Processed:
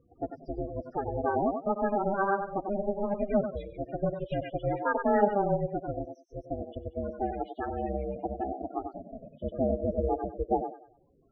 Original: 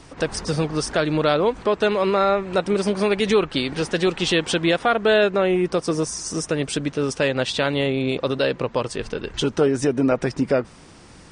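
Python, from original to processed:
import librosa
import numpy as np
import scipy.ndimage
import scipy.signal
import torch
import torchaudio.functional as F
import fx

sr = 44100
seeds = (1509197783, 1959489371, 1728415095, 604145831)

y = x * np.sin(2.0 * np.pi * 200.0 * np.arange(len(x)) / sr)
y = fx.echo_thinned(y, sr, ms=95, feedback_pct=45, hz=240.0, wet_db=-4)
y = fx.spec_topn(y, sr, count=16)
y = fx.filter_lfo_lowpass(y, sr, shape='sine', hz=7.0, low_hz=860.0, high_hz=2300.0, q=1.4)
y = fx.upward_expand(y, sr, threshold_db=-36.0, expansion=1.5)
y = F.gain(torch.from_numpy(y), -4.5).numpy()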